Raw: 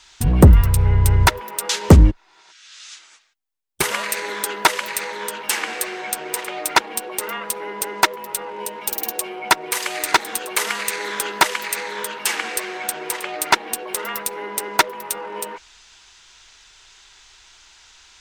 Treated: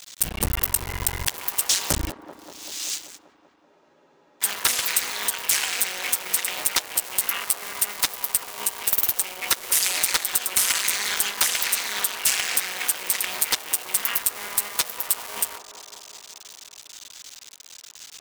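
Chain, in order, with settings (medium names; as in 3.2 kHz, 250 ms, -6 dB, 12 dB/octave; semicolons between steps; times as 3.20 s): cycle switcher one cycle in 2, muted; pre-emphasis filter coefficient 0.97; in parallel at -1 dB: compression, threshold -35 dBFS, peak gain reduction 16.5 dB; on the sum: hard clipper -11 dBFS, distortion -12 dB; waveshaping leveller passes 3; on a send: feedback echo behind a band-pass 193 ms, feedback 73%, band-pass 580 Hz, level -8.5 dB; on the sum: spectral freeze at 3.68 s, 0.74 s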